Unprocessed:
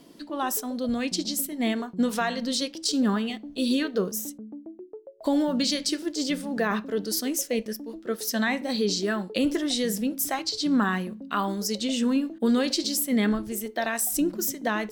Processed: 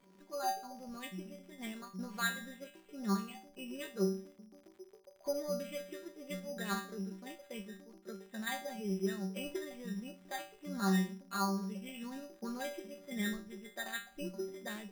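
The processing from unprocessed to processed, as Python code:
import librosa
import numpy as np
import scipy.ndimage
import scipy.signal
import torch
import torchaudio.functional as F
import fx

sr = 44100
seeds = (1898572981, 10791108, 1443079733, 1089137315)

y = fx.stiff_resonator(x, sr, f0_hz=190.0, decay_s=0.42, stiffness=0.002)
y = fx.dmg_crackle(y, sr, seeds[0], per_s=79.0, level_db=-51.0)
y = np.repeat(scipy.signal.resample_poly(y, 1, 8), 8)[:len(y)]
y = y * librosa.db_to_amplitude(4.0)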